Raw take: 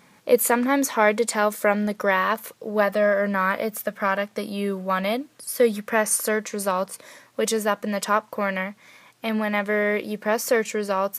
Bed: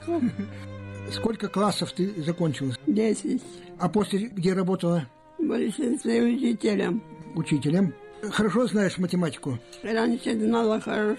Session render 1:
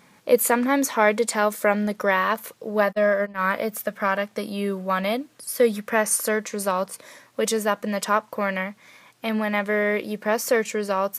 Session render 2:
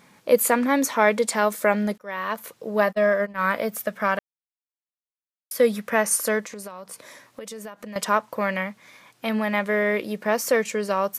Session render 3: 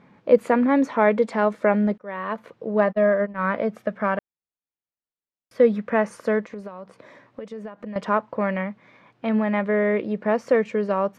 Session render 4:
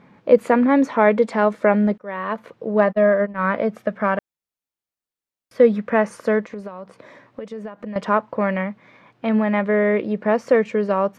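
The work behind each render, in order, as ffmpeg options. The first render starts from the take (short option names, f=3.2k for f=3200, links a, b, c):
-filter_complex "[0:a]asplit=3[a][b][c];[a]afade=t=out:st=2.91:d=0.02[d];[b]agate=range=-34dB:threshold=-23dB:ratio=16:release=100:detection=peak,afade=t=in:st=2.91:d=0.02,afade=t=out:st=3.43:d=0.02[e];[c]afade=t=in:st=3.43:d=0.02[f];[d][e][f]amix=inputs=3:normalize=0"
-filter_complex "[0:a]asettb=1/sr,asplit=3[a][b][c];[a]atrim=end=6.404[d];[b]atrim=start=6.4:end=7.96,asetpts=PTS-STARTPTS,afade=t=in:d=0.004:c=qsin,afade=t=out:st=1.556:d=0.004:c=qsin,acompressor=threshold=-33dB:ratio=12:attack=3.2:release=140:knee=1:detection=peak[e];[c]atrim=start=7.956[f];[d][e]acrossfade=d=0.004:c1=hsin:c2=qsin[g];[g][f]acrossfade=d=0.004:c1=qsin:c2=hsin,asplit=4[h][i][j][k];[h]atrim=end=1.98,asetpts=PTS-STARTPTS,afade=t=out:st=1.976:d=0.004:c=hsin[l];[i]atrim=start=1.98:end=4.19,asetpts=PTS-STARTPTS,afade=t=in:d=0.82:c=qsin,afade=t=out:st=2.206:d=0.004:c=hsin[m];[j]atrim=start=4.19:end=5.51,asetpts=PTS-STARTPTS,volume=0[n];[k]atrim=start=5.51,asetpts=PTS-STARTPTS,afade=t=in:d=0.004:c=hsin[o];[l][m][n][o]concat=n=4:v=0:a=1"
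-af "lowpass=2.7k,tiltshelf=f=810:g=4.5"
-af "volume=3dB,alimiter=limit=-2dB:level=0:latency=1"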